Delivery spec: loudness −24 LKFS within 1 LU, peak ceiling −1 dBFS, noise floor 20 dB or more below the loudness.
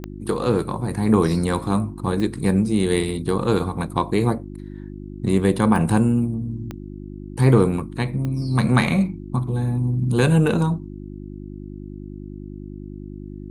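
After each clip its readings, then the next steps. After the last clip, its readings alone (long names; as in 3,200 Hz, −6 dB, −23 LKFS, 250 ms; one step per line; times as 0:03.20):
number of clicks 5; mains hum 50 Hz; hum harmonics up to 350 Hz; level of the hum −34 dBFS; integrated loudness −21.0 LKFS; sample peak −2.5 dBFS; target loudness −24.0 LKFS
→ click removal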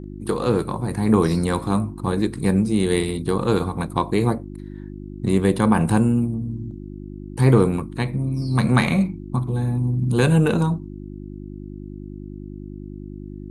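number of clicks 0; mains hum 50 Hz; hum harmonics up to 350 Hz; level of the hum −34 dBFS
→ hum removal 50 Hz, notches 7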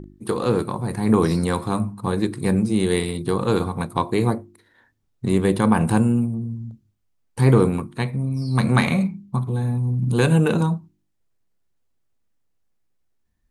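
mains hum none found; integrated loudness −21.5 LKFS; sample peak −3.0 dBFS; target loudness −24.0 LKFS
→ level −2.5 dB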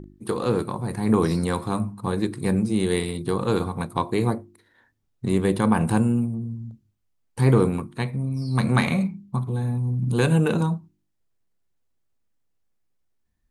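integrated loudness −24.0 LKFS; sample peak −5.5 dBFS; background noise floor −72 dBFS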